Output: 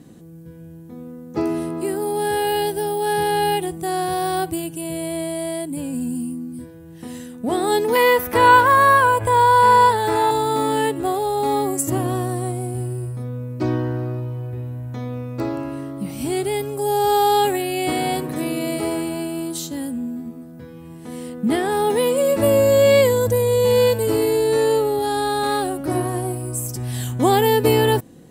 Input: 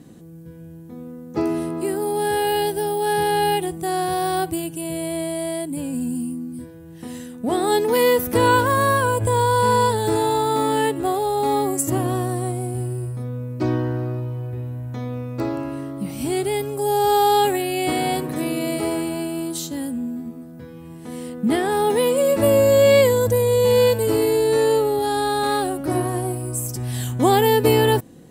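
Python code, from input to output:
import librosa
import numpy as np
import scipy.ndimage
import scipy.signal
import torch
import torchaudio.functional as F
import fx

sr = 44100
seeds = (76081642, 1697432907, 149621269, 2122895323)

y = fx.graphic_eq(x, sr, hz=(125, 250, 1000, 2000, 8000), db=(-5, -5, 6, 6, -4), at=(7.95, 10.31))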